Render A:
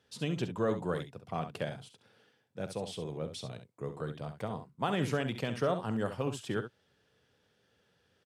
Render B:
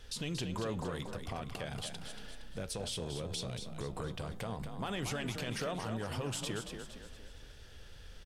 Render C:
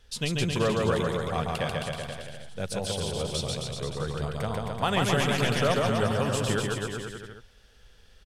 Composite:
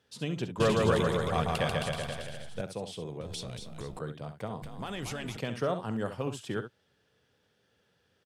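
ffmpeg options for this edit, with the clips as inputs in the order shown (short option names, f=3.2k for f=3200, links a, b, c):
-filter_complex "[1:a]asplit=2[a][b];[0:a]asplit=4[c][d][e][f];[c]atrim=end=0.602[g];[2:a]atrim=start=0.598:end=2.612[h];[d]atrim=start=2.608:end=3.212[i];[a]atrim=start=3.208:end=3.992[j];[e]atrim=start=3.988:end=4.622[k];[b]atrim=start=4.618:end=5.372[l];[f]atrim=start=5.368[m];[g][h]acrossfade=d=0.004:c1=hsin:c2=hsin[n];[n][i]acrossfade=d=0.004:c1=hsin:c2=hsin[o];[o][j]acrossfade=d=0.004:c1=hsin:c2=hsin[p];[p][k]acrossfade=d=0.004:c1=hsin:c2=hsin[q];[q][l]acrossfade=d=0.004:c1=hsin:c2=hsin[r];[r][m]acrossfade=d=0.004:c1=hsin:c2=hsin"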